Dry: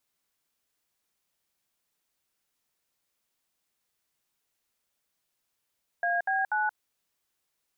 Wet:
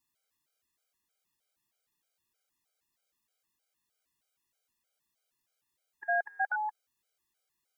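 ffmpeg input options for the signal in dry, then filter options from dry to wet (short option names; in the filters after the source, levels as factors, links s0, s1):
-f lavfi -i "aevalsrc='0.0447*clip(min(mod(t,0.243),0.177-mod(t,0.243))/0.002,0,1)*(eq(floor(t/0.243),0)*(sin(2*PI*697*mod(t,0.243))+sin(2*PI*1633*mod(t,0.243)))+eq(floor(t/0.243),1)*(sin(2*PI*770*mod(t,0.243))+sin(2*PI*1633*mod(t,0.243)))+eq(floor(t/0.243),2)*(sin(2*PI*852*mod(t,0.243))+sin(2*PI*1477*mod(t,0.243))))':d=0.729:s=44100"
-af "afftfilt=real='re*gt(sin(2*PI*3.2*pts/sr)*(1-2*mod(floor(b*sr/1024/410),2)),0)':imag='im*gt(sin(2*PI*3.2*pts/sr)*(1-2*mod(floor(b*sr/1024/410),2)),0)':win_size=1024:overlap=0.75"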